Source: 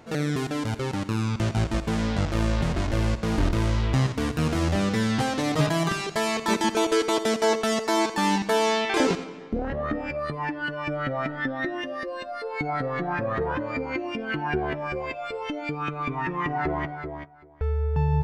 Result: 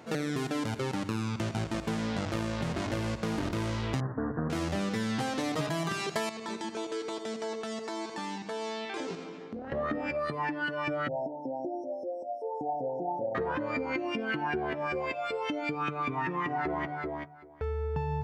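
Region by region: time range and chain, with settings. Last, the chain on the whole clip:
4.00–4.50 s: CVSD coder 16 kbps + steep low-pass 1.8 kHz 96 dB/octave
6.29–9.72 s: low-pass 8.9 kHz 24 dB/octave + compression 2.5:1, threshold -35 dBFS + feedback comb 56 Hz, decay 0.2 s
11.08–13.35 s: brick-wall FIR band-stop 950–5100 Hz + three-band isolator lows -13 dB, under 360 Hz, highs -19 dB, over 3.3 kHz
whole clip: high-pass 110 Hz 12 dB/octave; hum notches 50/100/150 Hz; compression, threshold -28 dBFS

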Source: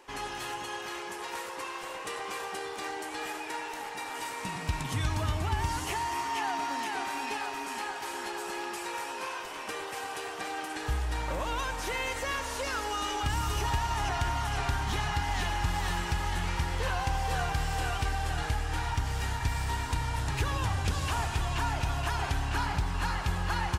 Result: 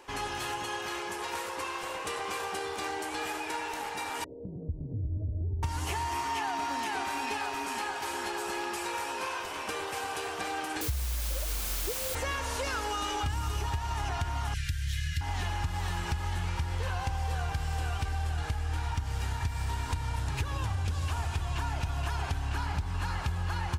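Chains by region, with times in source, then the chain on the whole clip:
4.24–5.63 s: steep low-pass 550 Hz 48 dB/octave + compression 2:1, threshold -41 dBFS
10.81–12.15 s: spectral contrast enhancement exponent 2.9 + steep low-pass 650 Hz 48 dB/octave + word length cut 6-bit, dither triangular
14.54–15.21 s: Chebyshev band-stop 160–1700 Hz, order 4 + treble shelf 8.9 kHz +7 dB
whole clip: peaking EQ 81 Hz +9.5 dB 0.55 oct; compression, threshold -31 dBFS; band-stop 1.9 kHz, Q 27; trim +2.5 dB

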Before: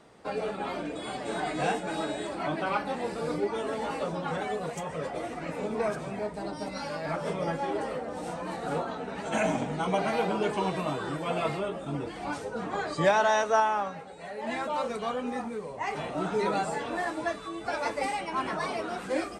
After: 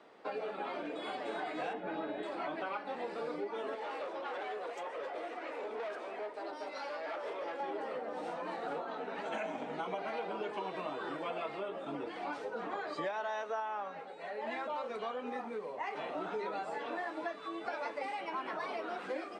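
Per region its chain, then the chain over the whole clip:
1.73–2.23 s: low-pass 3 kHz + bass shelf 230 Hz +11.5 dB
3.75–7.60 s: high-pass 310 Hz 24 dB/octave + valve stage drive 32 dB, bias 0.35
whole clip: three-band isolator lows -23 dB, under 250 Hz, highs -17 dB, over 4.5 kHz; compression 6:1, threshold -34 dBFS; trim -1.5 dB

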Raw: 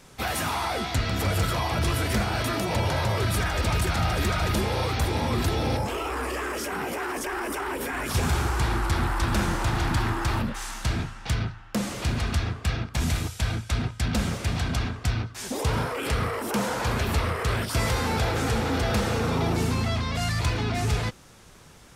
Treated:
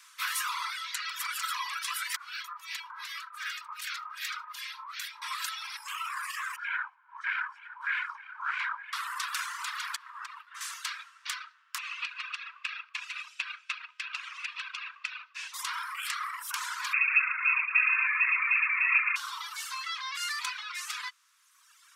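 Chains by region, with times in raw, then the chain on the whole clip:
2.16–5.22 s: harmonic tremolo 2.6 Hz, depth 100%, crossover 1.3 kHz + dynamic bell 9.3 kHz, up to -7 dB, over -54 dBFS, Q 1.2
6.56–8.93 s: comb filter that takes the minimum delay 1.3 ms + LFO low-pass sine 1.6 Hz 460–2300 Hz + delay 911 ms -9.5 dB
9.96–10.61 s: tilt EQ -3.5 dB/octave + compression 4:1, threshold -16 dBFS
11.78–15.54 s: low-pass 3.9 kHz + compression 4:1, threshold -26 dBFS + peaking EQ 2.6 kHz +14.5 dB 0.2 oct
16.93–19.16 s: feedback delay 115 ms, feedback 60%, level -6 dB + frequency inversion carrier 2.6 kHz
whole clip: reverb removal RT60 1.6 s; steep high-pass 1 kHz 96 dB/octave

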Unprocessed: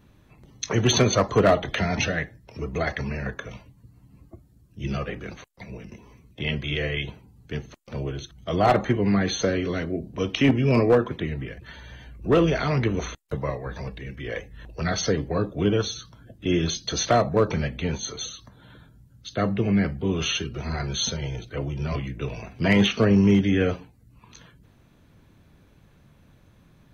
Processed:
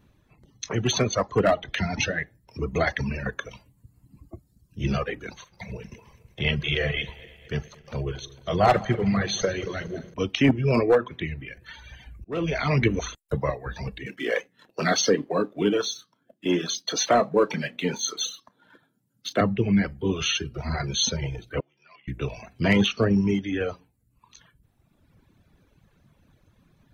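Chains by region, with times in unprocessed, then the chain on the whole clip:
5.32–10.14 s: backward echo that repeats 114 ms, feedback 72%, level -9.5 dB + peaking EQ 280 Hz -11 dB 0.37 oct + doubling 41 ms -14 dB
10.80–13.03 s: peaking EQ 2.3 kHz +6.5 dB 0.32 oct + de-hum 125.2 Hz, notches 16 + slow attack 559 ms
14.06–19.41 s: high-pass 190 Hz 24 dB/octave + doubling 33 ms -12 dB + waveshaping leveller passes 1
21.60–22.08 s: band-pass 130–2400 Hz + differentiator
whole clip: reverb removal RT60 1.7 s; gain riding within 4 dB 2 s

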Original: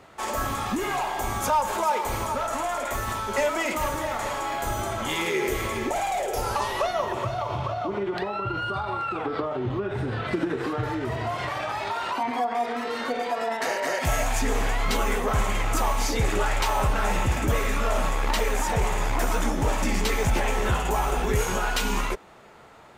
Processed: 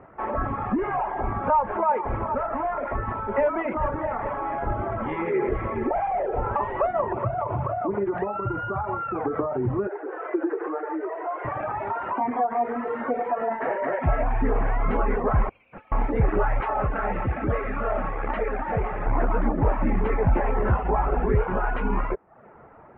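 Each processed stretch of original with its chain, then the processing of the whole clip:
9.87–11.45 s: Chebyshev high-pass 320 Hz, order 6 + distance through air 210 m
15.49–15.92 s: steep high-pass 2.3 kHz 96 dB/octave + tilt EQ -3 dB/octave + decimation joined by straight lines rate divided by 6×
16.60–19.06 s: tilt EQ +1.5 dB/octave + band-stop 980 Hz, Q 6.1
whole clip: Bessel low-pass 1.2 kHz, order 8; reverb removal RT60 0.55 s; trim +4 dB

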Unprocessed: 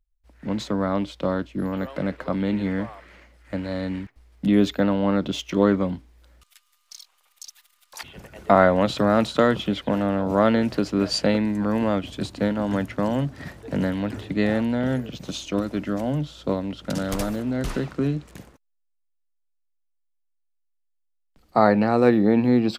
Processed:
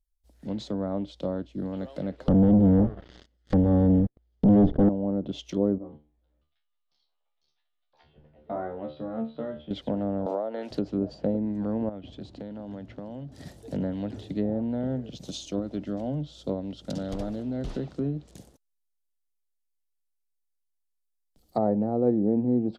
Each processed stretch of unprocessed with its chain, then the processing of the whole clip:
2.28–4.89 s: comb filter that takes the minimum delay 0.61 ms + waveshaping leveller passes 5 + distance through air 170 m
5.78–9.71 s: Gaussian low-pass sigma 3.3 samples + feedback comb 75 Hz, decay 0.29 s, mix 100%
10.26–10.71 s: high-pass 610 Hz + three bands compressed up and down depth 100%
11.89–13.32 s: low-pass 2.7 kHz + compression 4:1, threshold -30 dBFS
whole clip: treble shelf 7.4 kHz +11 dB; low-pass that closes with the level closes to 710 Hz, closed at -16.5 dBFS; high-order bell 1.6 kHz -10 dB; trim -5.5 dB

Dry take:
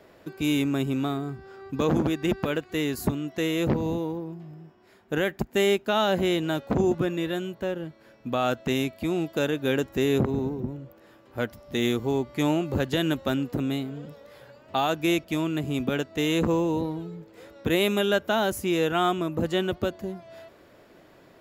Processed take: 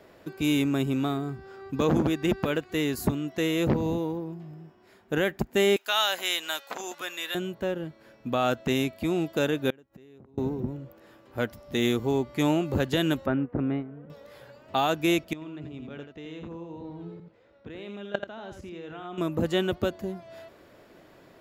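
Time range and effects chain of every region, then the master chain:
5.76–7.35 s: high-pass 1 kHz + treble shelf 2.7 kHz +9.5 dB
9.70–10.38 s: treble shelf 4.4 kHz -10 dB + inverted gate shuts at -29 dBFS, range -29 dB
13.26–14.10 s: gate -30 dBFS, range -7 dB + low-pass 2 kHz 24 dB/octave
15.33–19.18 s: level held to a coarse grid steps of 20 dB + distance through air 160 m + delay 84 ms -6.5 dB
whole clip: none

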